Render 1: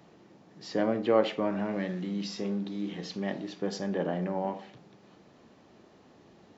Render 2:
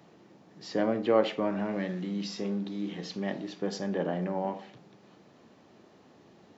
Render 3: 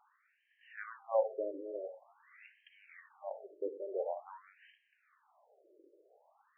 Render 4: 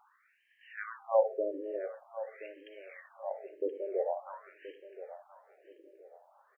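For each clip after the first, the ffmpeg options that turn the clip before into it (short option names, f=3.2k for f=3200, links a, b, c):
-af "highpass=81"
-af "afftfilt=real='re*between(b*sr/1024,420*pow(2300/420,0.5+0.5*sin(2*PI*0.47*pts/sr))/1.41,420*pow(2300/420,0.5+0.5*sin(2*PI*0.47*pts/sr))*1.41)':imag='im*between(b*sr/1024,420*pow(2300/420,0.5+0.5*sin(2*PI*0.47*pts/sr))/1.41,420*pow(2300/420,0.5+0.5*sin(2*PI*0.47*pts/sr))*1.41)':win_size=1024:overlap=0.75,volume=-3.5dB"
-af "aecho=1:1:1026|2052|3078:0.2|0.0579|0.0168,volume=4.5dB"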